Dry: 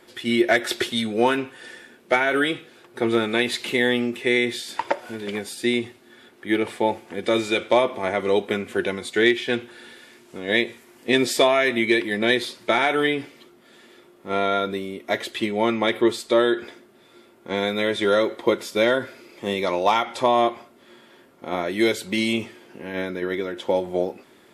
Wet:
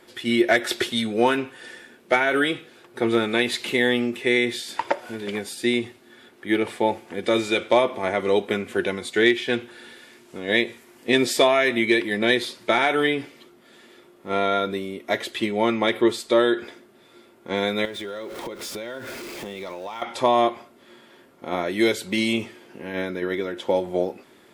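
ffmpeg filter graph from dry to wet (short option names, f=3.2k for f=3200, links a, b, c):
-filter_complex "[0:a]asettb=1/sr,asplit=3[a][b][c];[a]atrim=end=17.854[d];[b]atrim=start=17.85:end=20.02,asetpts=PTS-STARTPTS,afade=t=in:d=0.004:c=qsin,afade=t=out:st=2.166:d=0.004:c=qsin,aeval=exprs='val(0)+0.5*0.0237*sgn(val(0))':c=same,acompressor=threshold=-30dB:ratio=10:attack=3.2:release=140:knee=1:detection=peak[e];[c]atrim=start=20.016[f];[d][e]acrossfade=d=0.004:c1=hsin:c2=qsin[g];[g][f]acrossfade=d=0.004:c1=qsin:c2=hsin"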